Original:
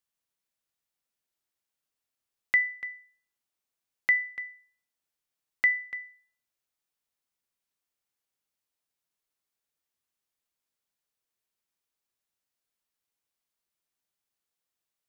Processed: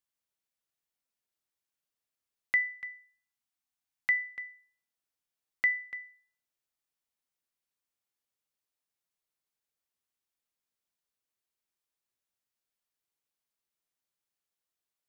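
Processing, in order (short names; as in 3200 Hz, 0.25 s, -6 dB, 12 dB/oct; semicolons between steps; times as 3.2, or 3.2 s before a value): 2.82–4.18 elliptic band-stop 310–690 Hz; gain -3.5 dB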